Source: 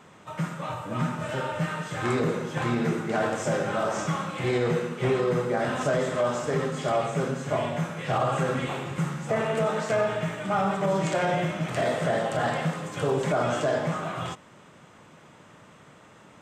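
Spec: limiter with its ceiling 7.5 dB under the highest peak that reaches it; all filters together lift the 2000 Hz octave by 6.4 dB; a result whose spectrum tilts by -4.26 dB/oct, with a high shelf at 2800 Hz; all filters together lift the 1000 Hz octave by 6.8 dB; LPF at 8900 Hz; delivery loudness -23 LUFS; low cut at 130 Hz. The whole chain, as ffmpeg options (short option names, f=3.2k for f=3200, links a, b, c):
-af "highpass=130,lowpass=8.9k,equalizer=f=1k:t=o:g=8,equalizer=f=2k:t=o:g=6.5,highshelf=f=2.8k:g=-3.5,volume=3dB,alimiter=limit=-13.5dB:level=0:latency=1"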